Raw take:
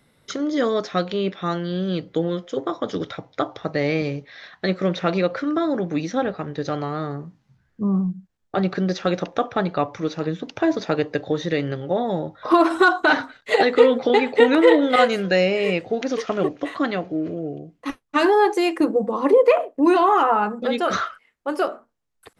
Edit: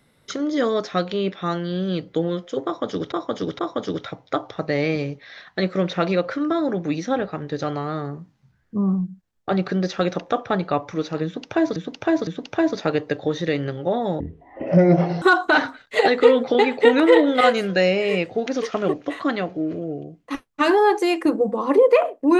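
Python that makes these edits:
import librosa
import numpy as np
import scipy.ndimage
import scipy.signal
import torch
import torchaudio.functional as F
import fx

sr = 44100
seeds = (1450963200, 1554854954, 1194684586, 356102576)

y = fx.edit(x, sr, fx.repeat(start_s=2.65, length_s=0.47, count=3),
    fx.repeat(start_s=10.31, length_s=0.51, count=3),
    fx.speed_span(start_s=12.24, length_s=0.53, speed=0.52), tone=tone)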